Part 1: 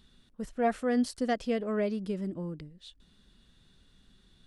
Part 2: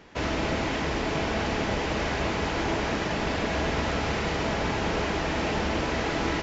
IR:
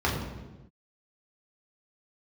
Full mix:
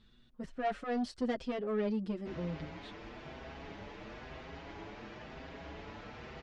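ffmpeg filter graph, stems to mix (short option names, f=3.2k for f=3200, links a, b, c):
-filter_complex "[0:a]asoftclip=type=tanh:threshold=-29.5dB,aeval=exprs='0.0335*(cos(1*acos(clip(val(0)/0.0335,-1,1)))-cos(1*PI/2))+0.00211*(cos(3*acos(clip(val(0)/0.0335,-1,1)))-cos(3*PI/2))+0.000376*(cos(7*acos(clip(val(0)/0.0335,-1,1)))-cos(7*PI/2))':c=same,volume=3dB[a];[1:a]adelay=2100,volume=-17dB[b];[a][b]amix=inputs=2:normalize=0,lowpass=4.4k,asplit=2[c][d];[d]adelay=6.4,afreqshift=1[e];[c][e]amix=inputs=2:normalize=1"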